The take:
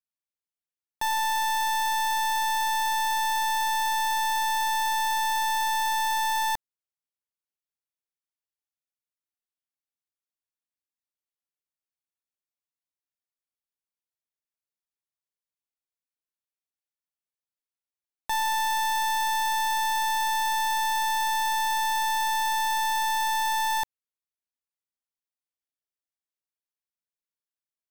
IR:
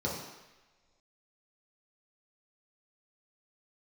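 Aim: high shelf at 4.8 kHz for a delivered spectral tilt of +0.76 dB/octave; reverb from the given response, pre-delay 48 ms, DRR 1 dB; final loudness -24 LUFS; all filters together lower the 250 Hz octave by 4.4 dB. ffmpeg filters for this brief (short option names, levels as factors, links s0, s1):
-filter_complex "[0:a]equalizer=f=250:t=o:g=-6,highshelf=f=4800:g=3.5,asplit=2[s0][s1];[1:a]atrim=start_sample=2205,adelay=48[s2];[s1][s2]afir=irnorm=-1:irlink=0,volume=0.398[s3];[s0][s3]amix=inputs=2:normalize=0,volume=0.531"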